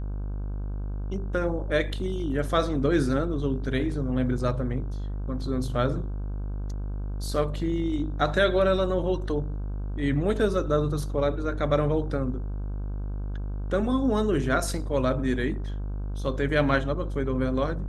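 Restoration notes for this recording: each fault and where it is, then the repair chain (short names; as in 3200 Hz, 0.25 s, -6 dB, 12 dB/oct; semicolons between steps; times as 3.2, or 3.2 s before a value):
buzz 50 Hz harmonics 32 -31 dBFS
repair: de-hum 50 Hz, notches 32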